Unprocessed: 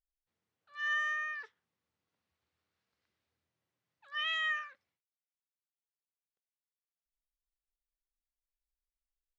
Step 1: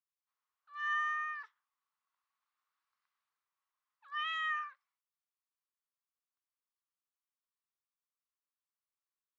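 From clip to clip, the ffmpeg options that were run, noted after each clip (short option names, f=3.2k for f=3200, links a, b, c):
-af "highpass=f=1.1k:t=q:w=4.6,volume=-7dB"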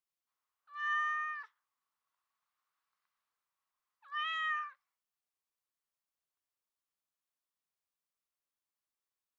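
-af "equalizer=f=670:w=1.5:g=2.5"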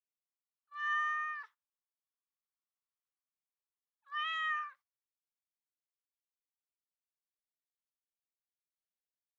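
-af "agate=range=-20dB:threshold=-58dB:ratio=16:detection=peak"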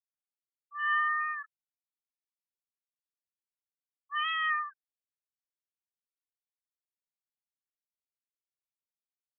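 -af "afftfilt=real='re*gte(hypot(re,im),0.0141)':imag='im*gte(hypot(re,im),0.0141)':win_size=1024:overlap=0.75,volume=5.5dB"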